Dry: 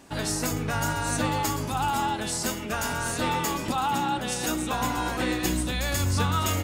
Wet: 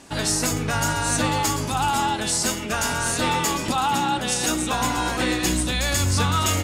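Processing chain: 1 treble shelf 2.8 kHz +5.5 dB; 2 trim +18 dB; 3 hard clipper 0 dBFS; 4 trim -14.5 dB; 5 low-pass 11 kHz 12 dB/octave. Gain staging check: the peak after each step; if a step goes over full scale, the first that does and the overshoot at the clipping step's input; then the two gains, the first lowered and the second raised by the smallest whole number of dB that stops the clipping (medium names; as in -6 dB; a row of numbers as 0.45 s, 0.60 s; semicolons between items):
-9.5 dBFS, +8.5 dBFS, 0.0 dBFS, -14.5 dBFS, -13.0 dBFS; step 2, 8.5 dB; step 2 +9 dB, step 4 -5.5 dB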